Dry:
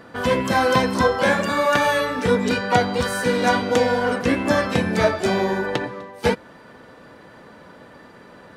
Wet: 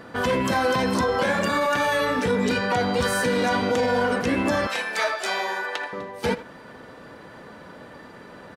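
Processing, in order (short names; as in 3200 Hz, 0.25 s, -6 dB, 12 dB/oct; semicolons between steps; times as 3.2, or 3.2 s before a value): 4.67–5.93 HPF 920 Hz 12 dB/oct; limiter -15.5 dBFS, peak gain reduction 11 dB; speakerphone echo 80 ms, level -13 dB; gain +1.5 dB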